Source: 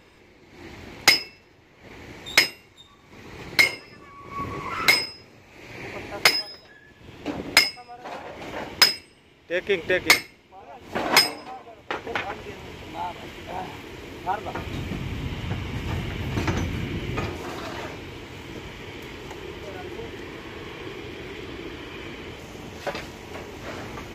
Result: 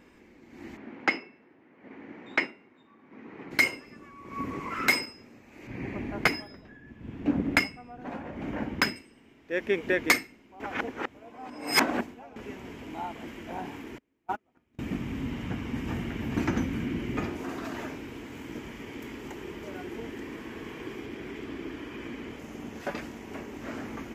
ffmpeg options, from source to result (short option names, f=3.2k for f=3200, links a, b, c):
-filter_complex "[0:a]asplit=3[a][b][c];[a]afade=t=out:st=0.76:d=0.02[d];[b]highpass=180,lowpass=2.2k,afade=t=in:st=0.76:d=0.02,afade=t=out:st=3.5:d=0.02[e];[c]afade=t=in:st=3.5:d=0.02[f];[d][e][f]amix=inputs=3:normalize=0,asettb=1/sr,asplit=3[g][h][i];[g]atrim=end=5.674[j];[h]atrim=start=5.67:end=8.96,asetpts=PTS-STARTPTS,afade=t=in:d=0.004:c=qsin,afade=t=out:st=3.286:d=0.004:c=qsin,bass=f=250:g=11,treble=f=4k:g=-9[k];[i]atrim=start=8.956[l];[j][k]acrossfade=d=0.004:c1=hsin:c2=qsin[m];[m][l]acrossfade=d=0.004:c1=qsin:c2=hsin,asettb=1/sr,asplit=3[n][o][p];[n]atrim=end=13.984[q];[o]atrim=start=13.98:end=14.79,asetpts=PTS-STARTPTS,afade=t=in:d=0.004:c=qsin,afade=t=out:st=0.806:d=0.004:c=qsin,agate=range=-36dB:threshold=-26dB:ratio=16:release=100:detection=peak[r];[p]atrim=start=14.786[s];[q][r]acrossfade=d=0.004:c1=hsin:c2=qsin[t];[t][s]acrossfade=d=0.004:c1=qsin:c2=hsin,asettb=1/sr,asplit=3[u][v][w];[u]atrim=end=17.644[x];[v]atrim=start=17.64:end=21.06,asetpts=PTS-STARTPTS,afade=t=in:d=0.004:c=qsin,afade=t=out:st=3.416:d=0.004:c=qsin,highshelf=f=6.6k:g=4.5[y];[w]atrim=start=21.056[z];[x][y]acrossfade=d=0.004:c1=hsin:c2=qsin[aa];[aa][z]acrossfade=d=0.004:c1=qsin:c2=hsin,asplit=3[ab][ac][ad];[ab]atrim=end=10.602[ae];[ac]atrim=start=10.598:end=12.362,asetpts=PTS-STARTPTS,areverse[af];[ad]atrim=start=12.358[ag];[ae][af]acrossfade=d=0.004:c1=hsin:c2=hsin[ah];[ah][ag]acrossfade=d=0.004:c1=hsin:c2=hsin,equalizer=f=100:t=o:w=0.67:g=-4,equalizer=f=250:t=o:w=0.67:g=11,equalizer=f=1.6k:t=o:w=0.67:g=3,equalizer=f=4k:t=o:w=0.67:g=-7,volume=-5.5dB"